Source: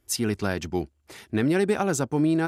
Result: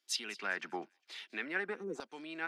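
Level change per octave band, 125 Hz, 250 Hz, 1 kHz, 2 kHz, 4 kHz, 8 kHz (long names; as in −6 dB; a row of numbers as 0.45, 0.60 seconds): −30.5, −22.5, −12.0, −4.0, −4.5, −12.5 decibels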